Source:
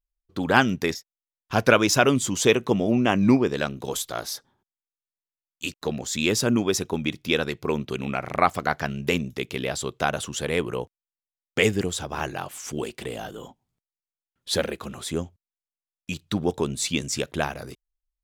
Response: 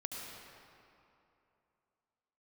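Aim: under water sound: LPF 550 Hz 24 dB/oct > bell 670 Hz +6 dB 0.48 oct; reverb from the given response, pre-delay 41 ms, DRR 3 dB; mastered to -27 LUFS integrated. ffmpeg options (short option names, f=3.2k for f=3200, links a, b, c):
-filter_complex "[0:a]asplit=2[a][b];[1:a]atrim=start_sample=2205,adelay=41[c];[b][c]afir=irnorm=-1:irlink=0,volume=-3dB[d];[a][d]amix=inputs=2:normalize=0,lowpass=f=550:w=0.5412,lowpass=f=550:w=1.3066,equalizer=f=670:t=o:w=0.48:g=6,volume=-1.5dB"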